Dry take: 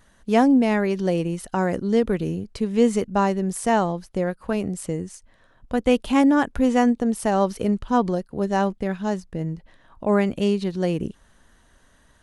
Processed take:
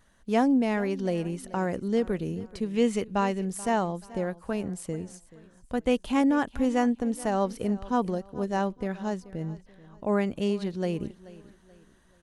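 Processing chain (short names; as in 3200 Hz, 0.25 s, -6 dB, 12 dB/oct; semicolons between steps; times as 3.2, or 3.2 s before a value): 2.7–3.45 bell 2600 Hz +6 dB 1 oct; feedback echo 0.432 s, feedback 37%, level -19 dB; gain -6 dB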